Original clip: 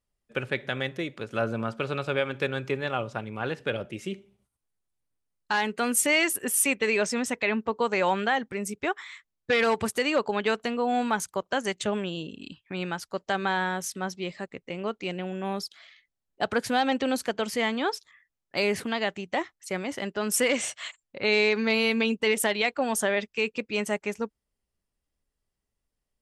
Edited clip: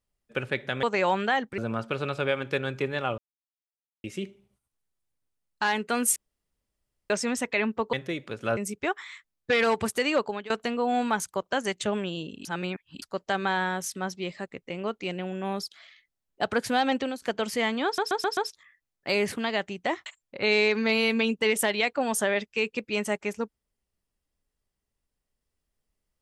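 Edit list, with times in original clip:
0:00.83–0:01.47: swap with 0:07.82–0:08.57
0:03.07–0:03.93: silence
0:06.05–0:06.99: fill with room tone
0:10.19–0:10.50: fade out, to −20 dB
0:12.45–0:13.02: reverse
0:16.97–0:17.22: fade out, to −18.5 dB
0:17.85: stutter 0.13 s, 5 plays
0:19.54–0:20.87: remove

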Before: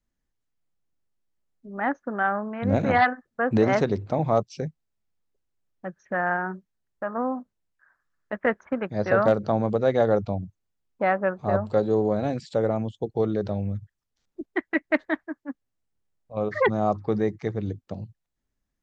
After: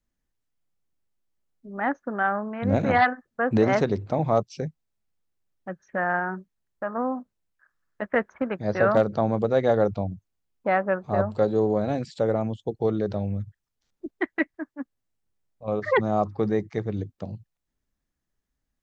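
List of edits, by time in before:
compress silence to 85%

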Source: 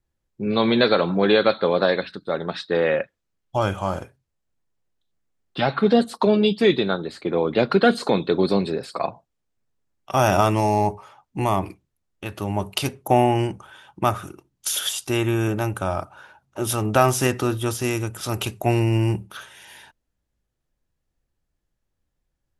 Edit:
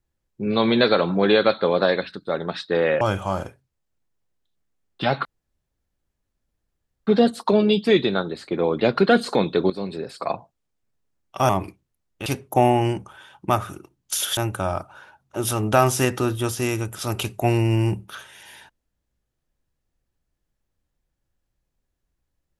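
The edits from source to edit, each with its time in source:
0:03.01–0:03.57: remove
0:05.81: splice in room tone 1.82 s
0:08.44–0:09.08: fade in, from −14 dB
0:10.23–0:11.51: remove
0:12.28–0:12.80: remove
0:14.91–0:15.59: remove

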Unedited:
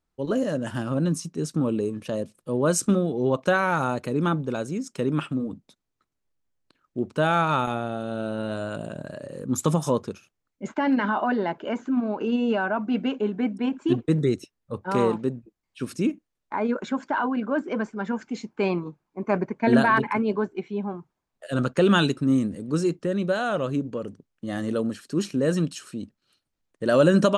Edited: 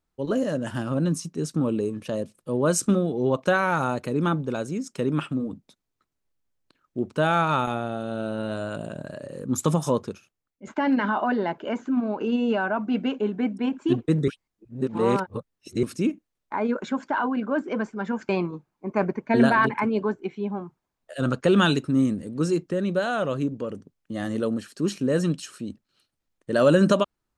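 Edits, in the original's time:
0:10.06–0:10.67: fade out, to −9.5 dB
0:14.28–0:15.83: reverse
0:18.29–0:18.62: remove

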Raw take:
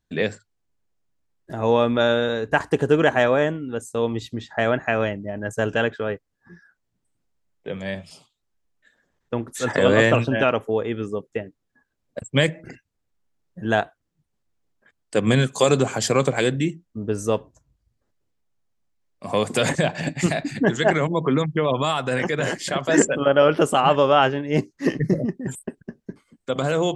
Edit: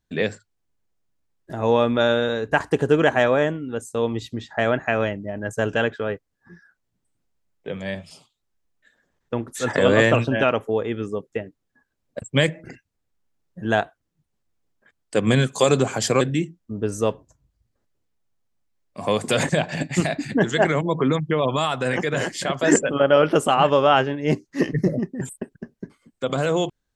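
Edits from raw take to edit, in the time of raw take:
0:16.21–0:16.47: remove

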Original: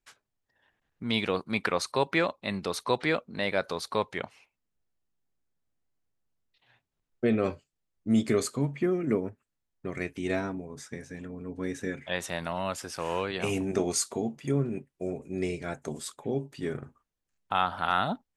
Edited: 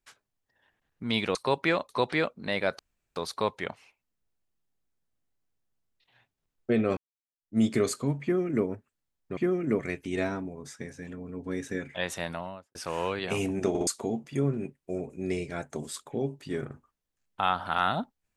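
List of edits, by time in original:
0:01.35–0:01.84: remove
0:02.38–0:02.80: remove
0:03.70: splice in room tone 0.37 s
0:07.51–0:08.12: fade in exponential
0:08.77–0:09.19: duplicate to 0:09.91
0:12.33–0:12.87: fade out and dull
0:13.81: stutter in place 0.06 s, 3 plays

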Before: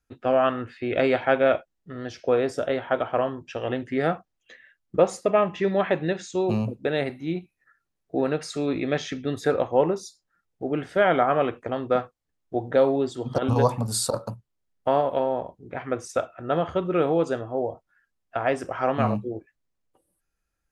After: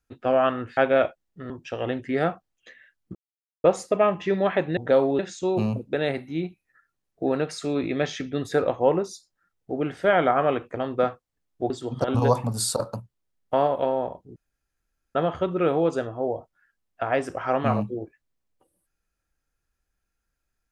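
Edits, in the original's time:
0:00.77–0:01.27: remove
0:02.00–0:03.33: remove
0:04.98: splice in silence 0.49 s
0:12.62–0:13.04: move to 0:06.11
0:15.70–0:16.49: fill with room tone

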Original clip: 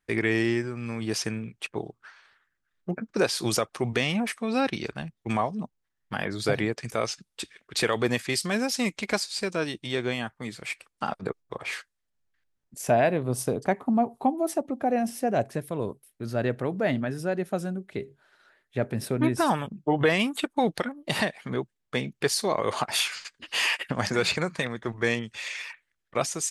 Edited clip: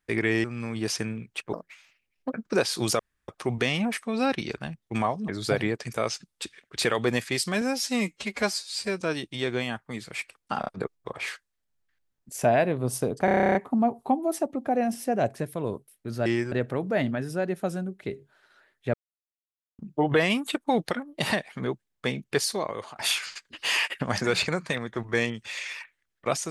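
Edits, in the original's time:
0:00.44–0:00.70: move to 0:16.41
0:01.79–0:02.97: play speed 147%
0:03.63: splice in room tone 0.29 s
0:05.63–0:06.26: remove
0:08.59–0:09.52: time-stretch 1.5×
0:11.12: stutter 0.03 s, 3 plays
0:13.70: stutter 0.03 s, 11 plays
0:18.83–0:19.68: silence
0:22.29–0:22.85: fade out, to −21 dB

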